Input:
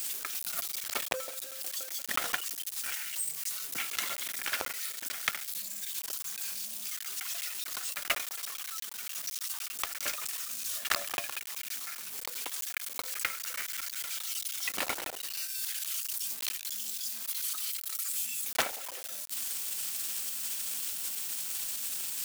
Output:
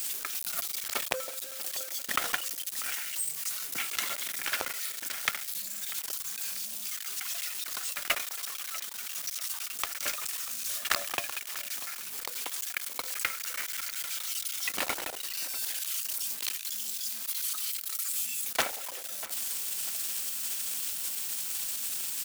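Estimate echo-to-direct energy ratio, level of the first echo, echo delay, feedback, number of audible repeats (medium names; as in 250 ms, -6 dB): -15.5 dB, -16.0 dB, 642 ms, 39%, 3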